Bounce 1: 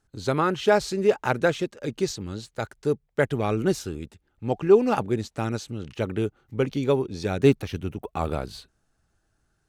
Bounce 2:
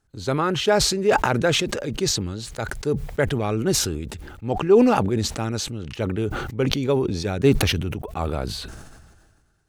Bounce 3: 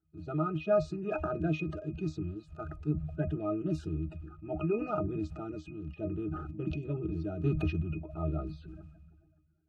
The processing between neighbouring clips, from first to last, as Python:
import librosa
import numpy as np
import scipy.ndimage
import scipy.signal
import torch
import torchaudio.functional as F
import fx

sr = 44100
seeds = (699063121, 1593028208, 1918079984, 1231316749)

y1 = fx.peak_eq(x, sr, hz=74.0, db=3.0, octaves=1.1)
y1 = fx.sustainer(y1, sr, db_per_s=35.0)
y2 = fx.spec_quant(y1, sr, step_db=30)
y2 = fx.octave_resonator(y2, sr, note='D#', decay_s=0.13)